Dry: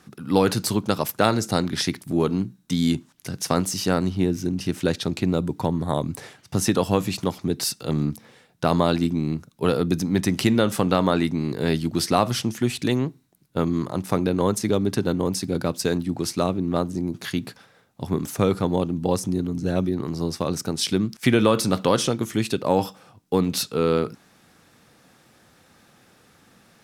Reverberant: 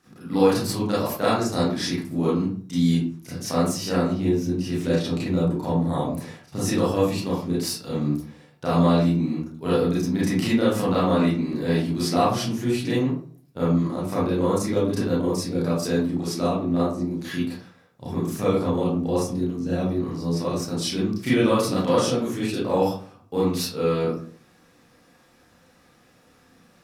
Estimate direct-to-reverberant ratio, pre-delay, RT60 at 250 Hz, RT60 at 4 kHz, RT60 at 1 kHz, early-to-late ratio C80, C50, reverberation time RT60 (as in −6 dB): −9.5 dB, 29 ms, 0.60 s, 0.25 s, 0.40 s, 7.5 dB, 0.5 dB, 0.45 s